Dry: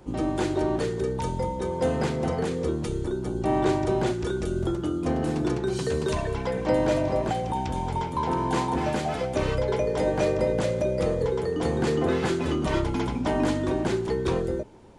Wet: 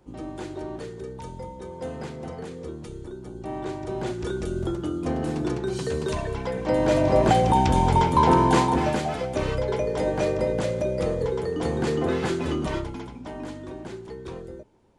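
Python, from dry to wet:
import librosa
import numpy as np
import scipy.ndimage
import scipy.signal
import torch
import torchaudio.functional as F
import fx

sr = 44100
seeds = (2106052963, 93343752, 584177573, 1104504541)

y = fx.gain(x, sr, db=fx.line((3.76, -9.0), (4.27, -1.0), (6.67, -1.0), (7.34, 9.0), (8.3, 9.0), (9.17, -0.5), (12.61, -0.5), (13.11, -11.5)))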